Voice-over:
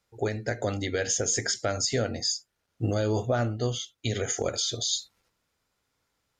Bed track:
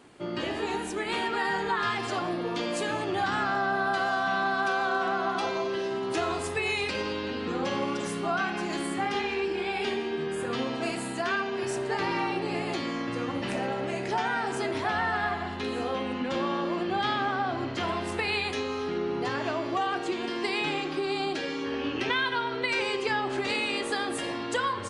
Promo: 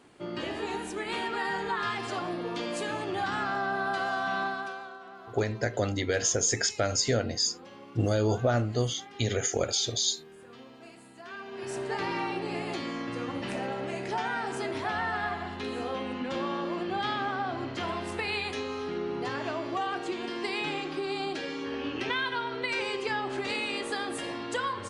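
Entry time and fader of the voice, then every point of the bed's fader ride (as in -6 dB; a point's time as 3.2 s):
5.15 s, +0.5 dB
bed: 4.43 s -3 dB
4.99 s -19 dB
11.14 s -19 dB
11.79 s -3 dB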